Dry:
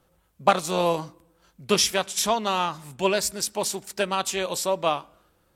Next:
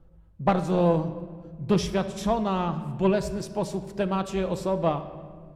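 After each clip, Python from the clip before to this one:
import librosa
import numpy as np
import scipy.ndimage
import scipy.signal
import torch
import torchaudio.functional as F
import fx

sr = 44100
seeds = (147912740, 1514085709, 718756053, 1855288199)

y = fx.tilt_eq(x, sr, slope=-4.5)
y = 10.0 ** (-7.5 / 20.0) * np.tanh(y / 10.0 ** (-7.5 / 20.0))
y = fx.room_shoebox(y, sr, seeds[0], volume_m3=2300.0, walls='mixed', distance_m=0.69)
y = y * librosa.db_to_amplitude(-4.0)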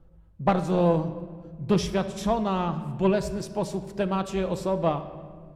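y = x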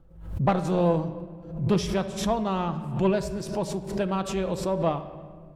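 y = fx.pre_swell(x, sr, db_per_s=88.0)
y = y * librosa.db_to_amplitude(-1.0)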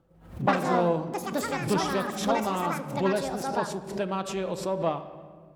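y = fx.highpass(x, sr, hz=240.0, slope=6)
y = fx.echo_pitch(y, sr, ms=145, semitones=6, count=2, db_per_echo=-3.0)
y = y * librosa.db_to_amplitude(-1.0)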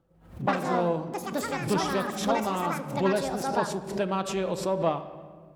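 y = fx.rider(x, sr, range_db=10, speed_s=2.0)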